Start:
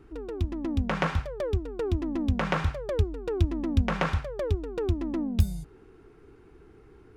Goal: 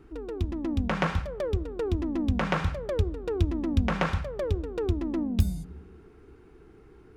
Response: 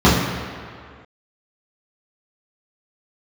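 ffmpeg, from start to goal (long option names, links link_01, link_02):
-filter_complex "[0:a]asplit=2[link_01][link_02];[1:a]atrim=start_sample=2205[link_03];[link_02][link_03]afir=irnorm=-1:irlink=0,volume=-47.5dB[link_04];[link_01][link_04]amix=inputs=2:normalize=0"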